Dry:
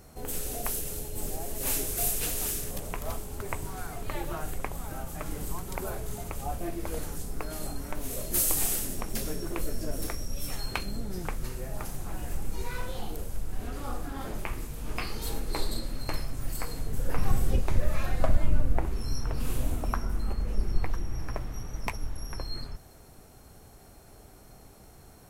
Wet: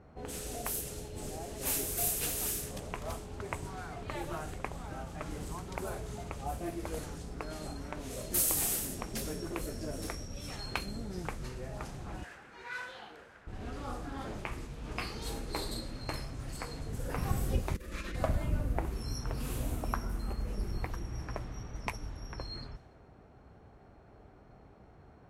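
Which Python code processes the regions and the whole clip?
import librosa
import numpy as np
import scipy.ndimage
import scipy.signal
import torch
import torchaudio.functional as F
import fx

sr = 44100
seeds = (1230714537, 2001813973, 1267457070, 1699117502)

y = fx.chain(x, sr, fx.highpass(hz=1200.0, slope=6),
    fx.peak_eq(hz=1600.0, db=9.5, octaves=0.62), at=(12.23, 13.47))
y = fx.chain(y, sr, fx.lower_of_two(delay_ms=5.9),
    fx.over_compress(threshold_db=-27.0, ratio=-1.0),
    fx.fixed_phaser(hz=310.0, stages=4), at=(17.74, 18.16))
y = scipy.signal.sosfilt(scipy.signal.butter(2, 45.0, 'highpass', fs=sr, output='sos'), y)
y = fx.env_lowpass(y, sr, base_hz=1600.0, full_db=-29.0)
y = F.gain(torch.from_numpy(y), -2.5).numpy()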